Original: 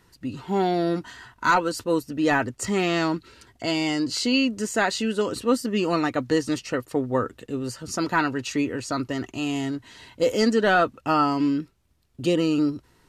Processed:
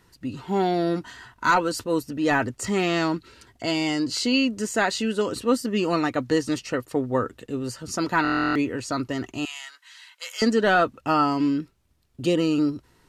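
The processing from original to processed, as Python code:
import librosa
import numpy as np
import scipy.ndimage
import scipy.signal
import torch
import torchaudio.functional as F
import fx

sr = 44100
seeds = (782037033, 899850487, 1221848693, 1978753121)

y = fx.transient(x, sr, attack_db=-3, sustain_db=2, at=(1.51, 2.68))
y = fx.highpass(y, sr, hz=1200.0, slope=24, at=(9.45, 10.42))
y = fx.buffer_glitch(y, sr, at_s=(8.23,), block=1024, repeats=13)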